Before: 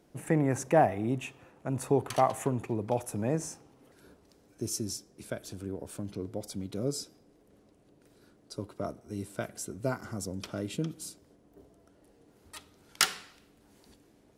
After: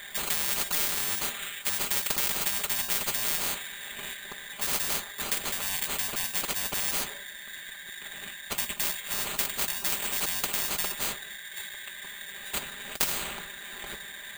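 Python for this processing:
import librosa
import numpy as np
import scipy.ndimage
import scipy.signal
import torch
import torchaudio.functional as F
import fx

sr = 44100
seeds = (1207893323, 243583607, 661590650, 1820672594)

y = fx.band_shuffle(x, sr, order='4123')
y = fx.sample_hold(y, sr, seeds[0], rate_hz=5400.0, jitter_pct=0)
y = y + 0.88 * np.pad(y, (int(5.0 * sr / 1000.0), 0))[:len(y)]
y = fx.spectral_comp(y, sr, ratio=10.0)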